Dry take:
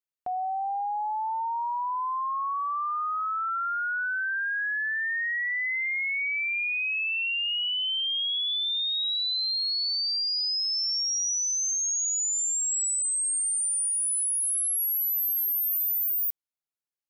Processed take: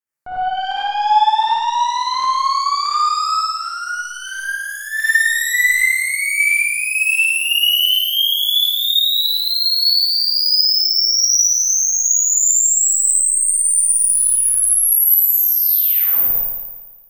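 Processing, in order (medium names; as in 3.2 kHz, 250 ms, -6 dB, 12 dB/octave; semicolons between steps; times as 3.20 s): peaking EQ 1.7 kHz +7.5 dB 0.29 oct; in parallel at +3 dB: peak limiter -29.5 dBFS, peak gain reduction 11 dB; on the sum: level rider gain up to 7 dB; Chebyshev shaper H 2 -20 dB, 3 -29 dB, 5 -28 dB, 8 -15 dB, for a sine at -8 dBFS; LFO notch saw down 1.4 Hz 850–4200 Hz; saturation -13 dBFS, distortion -21 dB; 3.40–4.97 s: feedback comb 160 Hz, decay 0.37 s, harmonics all, mix 80%; on a send: flutter echo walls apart 9.5 m, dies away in 1.3 s; on the sum: gated-style reverb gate 120 ms rising, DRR -6.5 dB; trim -8 dB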